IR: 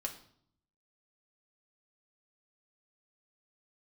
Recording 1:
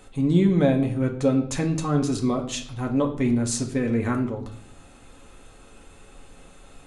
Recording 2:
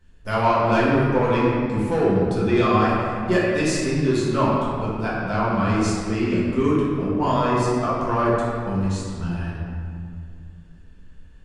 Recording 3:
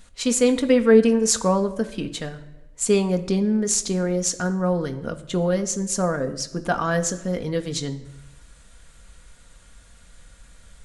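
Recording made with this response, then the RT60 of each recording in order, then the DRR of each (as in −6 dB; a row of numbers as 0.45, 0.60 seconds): 1; 0.60, 2.2, 1.0 seconds; 1.5, −8.0, 6.0 decibels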